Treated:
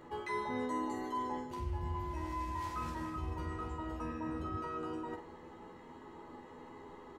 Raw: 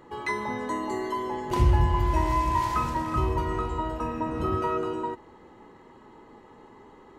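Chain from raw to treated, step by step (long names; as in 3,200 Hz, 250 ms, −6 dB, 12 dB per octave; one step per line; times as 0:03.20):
reversed playback
downward compressor 12 to 1, threshold −34 dBFS, peak gain reduction 19.5 dB
reversed playback
double-tracking delay 12 ms −4 dB
flutter between parallel walls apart 8.2 metres, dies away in 0.3 s
level −3 dB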